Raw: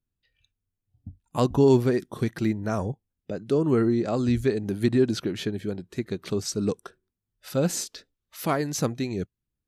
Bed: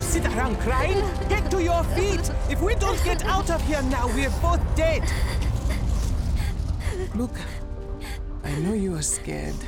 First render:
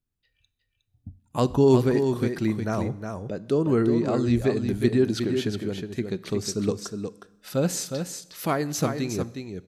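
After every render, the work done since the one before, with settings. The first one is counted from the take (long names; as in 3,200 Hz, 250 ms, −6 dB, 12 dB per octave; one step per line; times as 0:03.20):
single-tap delay 362 ms −6.5 dB
four-comb reverb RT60 1 s, combs from 30 ms, DRR 18.5 dB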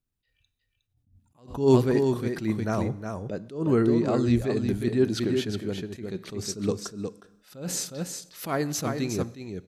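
level that may rise only so fast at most 140 dB per second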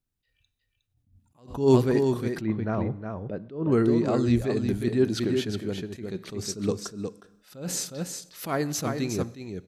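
0:02.41–0:03.72: high-frequency loss of the air 340 metres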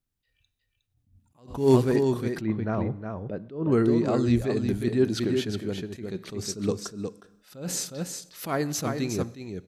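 0:01.55–0:01.96: variable-slope delta modulation 64 kbit/s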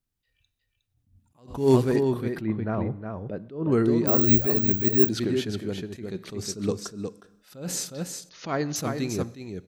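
0:02.00–0:03.14: parametric band 6,500 Hz −10 dB 0.98 octaves
0:04.07–0:05.09: bad sample-rate conversion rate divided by 2×, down none, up zero stuff
0:08.29–0:08.76: linear-phase brick-wall low-pass 7,000 Hz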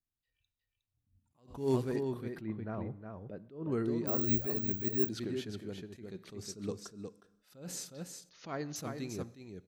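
level −11.5 dB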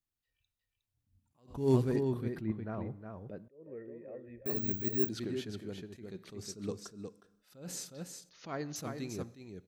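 0:01.55–0:02.52: low-shelf EQ 260 Hz +7.5 dB
0:03.48–0:04.46: formant resonators in series e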